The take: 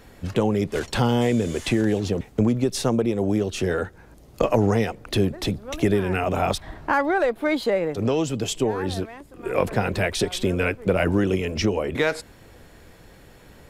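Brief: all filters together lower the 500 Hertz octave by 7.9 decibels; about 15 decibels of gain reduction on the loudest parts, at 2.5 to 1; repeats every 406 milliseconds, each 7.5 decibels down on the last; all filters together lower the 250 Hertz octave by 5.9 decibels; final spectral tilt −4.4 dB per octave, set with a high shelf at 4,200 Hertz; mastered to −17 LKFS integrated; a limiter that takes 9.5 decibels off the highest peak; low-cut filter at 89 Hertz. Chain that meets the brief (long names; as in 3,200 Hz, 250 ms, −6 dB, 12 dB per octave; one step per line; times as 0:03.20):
high-pass filter 89 Hz
parametric band 250 Hz −5 dB
parametric band 500 Hz −8.5 dB
high-shelf EQ 4,200 Hz +5 dB
downward compressor 2.5 to 1, threshold −44 dBFS
brickwall limiter −31.5 dBFS
repeating echo 406 ms, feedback 42%, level −7.5 dB
level +25 dB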